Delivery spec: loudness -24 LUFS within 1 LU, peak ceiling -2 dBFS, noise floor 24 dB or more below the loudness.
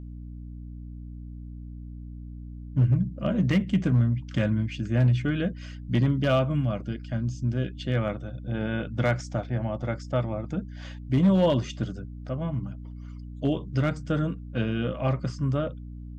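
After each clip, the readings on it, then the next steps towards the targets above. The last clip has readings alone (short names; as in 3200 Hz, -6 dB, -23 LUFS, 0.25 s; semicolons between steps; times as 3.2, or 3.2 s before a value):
clipped 0.5%; flat tops at -15.0 dBFS; hum 60 Hz; harmonics up to 300 Hz; hum level -38 dBFS; loudness -27.0 LUFS; peak -15.0 dBFS; loudness target -24.0 LUFS
-> clip repair -15 dBFS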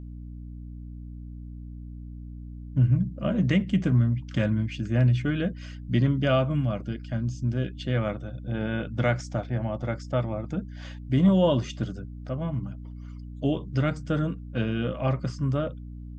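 clipped 0.0%; hum 60 Hz; harmonics up to 300 Hz; hum level -38 dBFS
-> notches 60/120/180/240/300 Hz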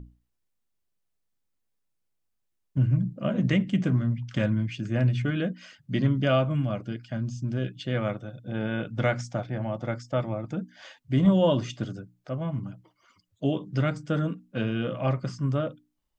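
hum none; loudness -28.0 LUFS; peak -10.0 dBFS; loudness target -24.0 LUFS
-> gain +4 dB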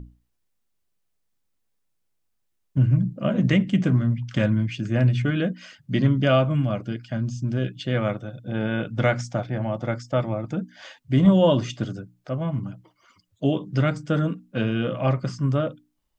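loudness -24.0 LUFS; peak -6.0 dBFS; noise floor -73 dBFS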